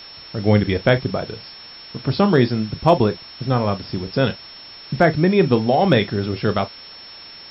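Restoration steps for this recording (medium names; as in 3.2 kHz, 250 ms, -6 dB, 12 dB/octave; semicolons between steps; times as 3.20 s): clip repair -3.5 dBFS; band-stop 5.4 kHz, Q 30; noise reduction 23 dB, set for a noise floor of -40 dBFS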